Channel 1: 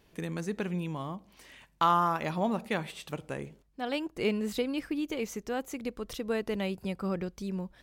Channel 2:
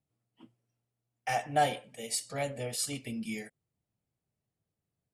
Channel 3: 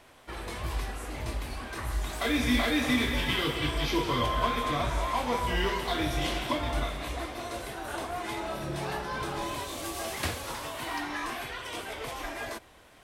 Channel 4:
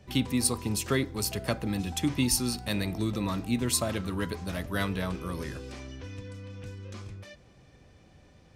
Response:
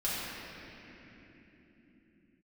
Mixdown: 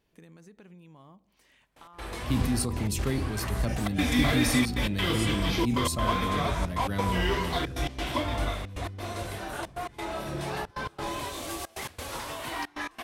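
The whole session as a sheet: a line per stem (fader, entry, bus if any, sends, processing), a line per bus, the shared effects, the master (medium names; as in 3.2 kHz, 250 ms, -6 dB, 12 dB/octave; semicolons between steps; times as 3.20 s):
-10.0 dB, 0.00 s, no send, peak limiter -26 dBFS, peak gain reduction 11.5 dB; compression 12:1, threshold -38 dBFS, peak gain reduction 9 dB
0.0 dB, 2.40 s, no send, amplifier tone stack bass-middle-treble 5-5-5
+0.5 dB, 1.65 s, no send, trance gate ".x.xxxxxx" 135 bpm -24 dB
-9.0 dB, 2.15 s, no send, bass shelf 360 Hz +11 dB; decay stretcher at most 27 dB/s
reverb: none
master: none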